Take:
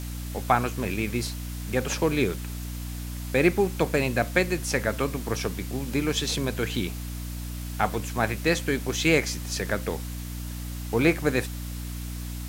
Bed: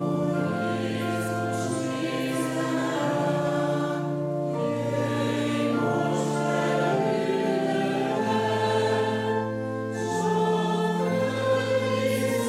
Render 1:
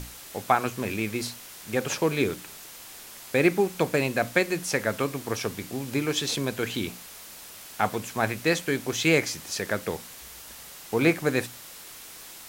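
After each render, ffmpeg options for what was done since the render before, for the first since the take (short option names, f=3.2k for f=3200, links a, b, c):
-af "bandreject=f=60:t=h:w=6,bandreject=f=120:t=h:w=6,bandreject=f=180:t=h:w=6,bandreject=f=240:t=h:w=6,bandreject=f=300:t=h:w=6"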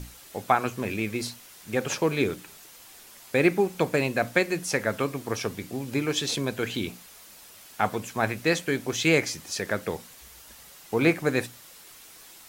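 -af "afftdn=nr=6:nf=-45"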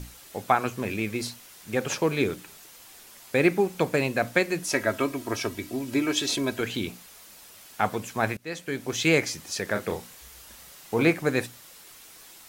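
-filter_complex "[0:a]asettb=1/sr,asplit=3[a][b][c];[a]atrim=end=4.644[d];[b]atrim=start=4.64:end=6.61,asetpts=PTS-STARTPTS,afade=t=in:d=0.004:c=qsin,afade=t=out:st=1.966:d=0.004:c=qsin,aecho=1:1:3.1:0.65,atrim=end_sample=86877[e];[c]atrim=start=6.606[f];[d][e]acrossfade=d=0.004:c1=hsin:c2=qsin[g];[g][f]acrossfade=d=0.004:c1=qsin:c2=hsin,asettb=1/sr,asplit=3[h][i][j];[h]atrim=end=9.724[k];[i]atrim=start=9.72:end=11.03,asetpts=PTS-STARTPTS,afade=t=in:d=0.004:c=qsin,afade=t=out:st=1.306:d=0.004:c=qsin,asplit=2[l][m];[m]adelay=34,volume=-6dB[n];[l][n]amix=inputs=2:normalize=0,atrim=end_sample=57771[o];[j]atrim=start=11.026[p];[k][o]acrossfade=d=0.004:c1=hsin:c2=qsin[q];[q][p]acrossfade=d=0.004:c1=qsin:c2=hsin,asplit=2[r][s];[r]atrim=end=8.37,asetpts=PTS-STARTPTS,afade=t=out:st=8.366:d=0.004:c=hsin:silence=0.0668344[t];[s]atrim=start=8.37,asetpts=PTS-STARTPTS,afade=t=in:d=0.61:silence=0.0668344[u];[t][u]concat=n=2:v=0:a=1"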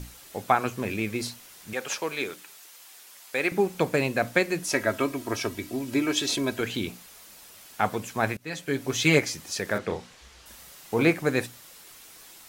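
-filter_complex "[0:a]asettb=1/sr,asplit=3[a][b][c];[a]atrim=end=1.734[d];[b]atrim=start=1.73:end=3.52,asetpts=PTS-STARTPTS,afade=t=in:d=0.004:c=qsin,afade=t=out:st=1.786:d=0.004:c=qsin,highpass=f=900:p=1[e];[c]atrim=start=3.516[f];[d][e]acrossfade=d=0.004:c1=hsin:c2=qsin[g];[g][f]acrossfade=d=0.004:c1=qsin:c2=hsin,asettb=1/sr,asplit=3[h][i][j];[h]atrim=end=8.404[k];[i]atrim=start=8.4:end=9.19,asetpts=PTS-STARTPTS,afade=t=in:d=0.004:c=qsin,afade=t=out:st=0.786:d=0.004:c=qsin,aecho=1:1:7.1:0.65,atrim=end_sample=34839[l];[j]atrim=start=9.186[m];[k][l]acrossfade=d=0.004:c1=hsin:c2=qsin[n];[n][m]acrossfade=d=0.004:c1=qsin:c2=hsin,asettb=1/sr,asplit=3[o][p][q];[o]atrim=end=9.784[r];[p]atrim=start=9.78:end=10.46,asetpts=PTS-STARTPTS,afade=t=in:d=0.004:c=qsin,afade=t=out:st=0.676:d=0.004:c=qsin,lowpass=5.5k[s];[q]atrim=start=10.456[t];[r][s]acrossfade=d=0.004:c1=hsin:c2=qsin[u];[u][t]acrossfade=d=0.004:c1=qsin:c2=hsin"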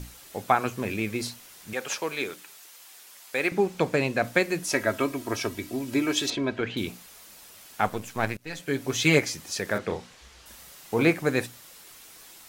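-filter_complex "[0:a]asettb=1/sr,asplit=3[a][b][c];[a]atrim=end=3.494[d];[b]atrim=start=3.49:end=4.24,asetpts=PTS-STARTPTS,afade=t=in:d=0.004:c=qsin,afade=t=out:st=0.746:d=0.004:c=qsin,acrossover=split=8300[e][f];[f]acompressor=threshold=-57dB:ratio=4:attack=1:release=60[g];[e][g]amix=inputs=2:normalize=0[h];[c]atrim=start=4.236[i];[d][h]acrossfade=d=0.004:c1=hsin:c2=qsin[j];[j][i]acrossfade=d=0.004:c1=qsin:c2=hsin,asettb=1/sr,asplit=3[k][l][m];[k]atrim=end=6.304[n];[l]atrim=start=6.3:end=6.77,asetpts=PTS-STARTPTS,afade=t=in:d=0.004:c=qsin,afade=t=out:st=0.466:d=0.004:c=qsin,lowpass=3.1k[o];[m]atrim=start=6.766[p];[n][o]acrossfade=d=0.004:c1=hsin:c2=qsin[q];[q][p]acrossfade=d=0.004:c1=qsin:c2=hsin,asettb=1/sr,asplit=3[r][s][t];[r]atrim=end=7.864[u];[s]atrim=start=7.86:end=8.6,asetpts=PTS-STARTPTS,afade=t=in:d=0.004:c=qsin,afade=t=out:st=0.736:d=0.004:c=qsin,aeval=exprs='if(lt(val(0),0),0.447*val(0),val(0))':c=same[v];[t]atrim=start=8.596[w];[u][v]acrossfade=d=0.004:c1=hsin:c2=qsin[x];[x][w]acrossfade=d=0.004:c1=qsin:c2=hsin"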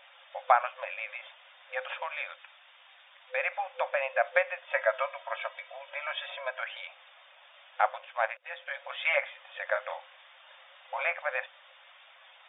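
-filter_complex "[0:a]afftfilt=real='re*between(b*sr/4096,510,3700)':imag='im*between(b*sr/4096,510,3700)':win_size=4096:overlap=0.75,acrossover=split=2600[a][b];[b]acompressor=threshold=-48dB:ratio=4:attack=1:release=60[c];[a][c]amix=inputs=2:normalize=0"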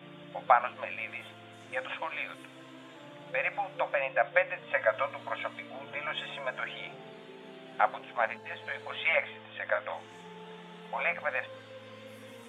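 -filter_complex "[1:a]volume=-24.5dB[a];[0:a][a]amix=inputs=2:normalize=0"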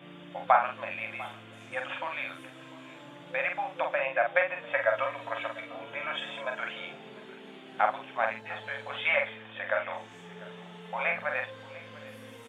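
-filter_complex "[0:a]asplit=2[a][b];[b]adelay=45,volume=-5dB[c];[a][c]amix=inputs=2:normalize=0,aecho=1:1:697:0.106"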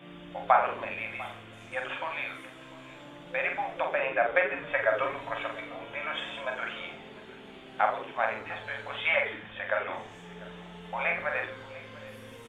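-filter_complex "[0:a]asplit=2[a][b];[b]adelay=17,volume=-14dB[c];[a][c]amix=inputs=2:normalize=0,asplit=2[d][e];[e]asplit=5[f][g][h][i][j];[f]adelay=86,afreqshift=-130,volume=-12.5dB[k];[g]adelay=172,afreqshift=-260,volume=-19.1dB[l];[h]adelay=258,afreqshift=-390,volume=-25.6dB[m];[i]adelay=344,afreqshift=-520,volume=-32.2dB[n];[j]adelay=430,afreqshift=-650,volume=-38.7dB[o];[k][l][m][n][o]amix=inputs=5:normalize=0[p];[d][p]amix=inputs=2:normalize=0"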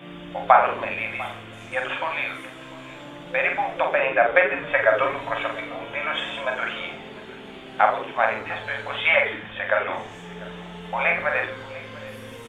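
-af "volume=7.5dB,alimiter=limit=-1dB:level=0:latency=1"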